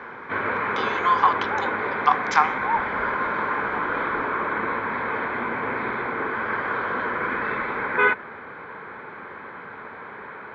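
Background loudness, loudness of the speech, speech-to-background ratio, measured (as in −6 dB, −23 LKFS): −25.0 LKFS, −23.5 LKFS, 1.5 dB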